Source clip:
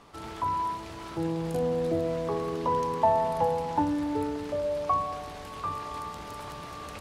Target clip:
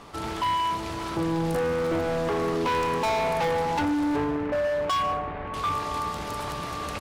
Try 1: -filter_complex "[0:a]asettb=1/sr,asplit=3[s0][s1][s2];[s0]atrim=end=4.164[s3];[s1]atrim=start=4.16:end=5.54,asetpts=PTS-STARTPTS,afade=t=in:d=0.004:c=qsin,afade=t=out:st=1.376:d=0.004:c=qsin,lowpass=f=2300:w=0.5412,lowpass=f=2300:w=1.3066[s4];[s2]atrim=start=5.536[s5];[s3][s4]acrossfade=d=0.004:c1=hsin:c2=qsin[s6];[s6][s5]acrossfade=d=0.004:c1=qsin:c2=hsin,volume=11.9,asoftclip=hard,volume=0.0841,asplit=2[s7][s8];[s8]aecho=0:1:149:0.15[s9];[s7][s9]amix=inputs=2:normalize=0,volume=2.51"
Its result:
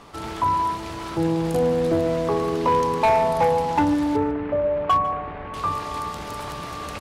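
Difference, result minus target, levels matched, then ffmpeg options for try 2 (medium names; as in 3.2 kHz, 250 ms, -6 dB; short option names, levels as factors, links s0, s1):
overload inside the chain: distortion -9 dB
-filter_complex "[0:a]asettb=1/sr,asplit=3[s0][s1][s2];[s0]atrim=end=4.164[s3];[s1]atrim=start=4.16:end=5.54,asetpts=PTS-STARTPTS,afade=t=in:d=0.004:c=qsin,afade=t=out:st=1.376:d=0.004:c=qsin,lowpass=f=2300:w=0.5412,lowpass=f=2300:w=1.3066[s4];[s2]atrim=start=5.536[s5];[s3][s4]acrossfade=d=0.004:c1=hsin:c2=qsin[s6];[s6][s5]acrossfade=d=0.004:c1=qsin:c2=hsin,volume=35.5,asoftclip=hard,volume=0.0282,asplit=2[s7][s8];[s8]aecho=0:1:149:0.15[s9];[s7][s9]amix=inputs=2:normalize=0,volume=2.51"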